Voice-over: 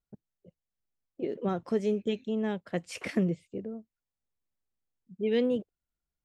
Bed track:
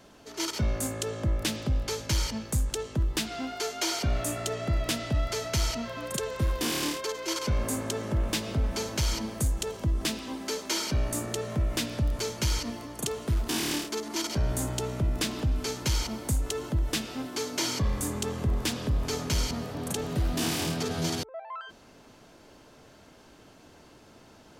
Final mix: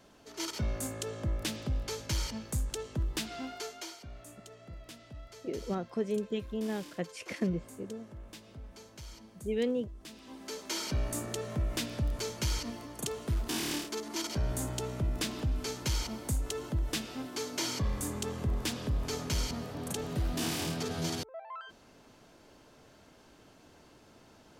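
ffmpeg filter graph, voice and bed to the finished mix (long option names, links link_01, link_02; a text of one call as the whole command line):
ffmpeg -i stem1.wav -i stem2.wav -filter_complex "[0:a]adelay=4250,volume=-4dB[link_01];[1:a]volume=10dB,afade=type=out:start_time=3.46:duration=0.51:silence=0.188365,afade=type=in:start_time=10.05:duration=0.87:silence=0.16788[link_02];[link_01][link_02]amix=inputs=2:normalize=0" out.wav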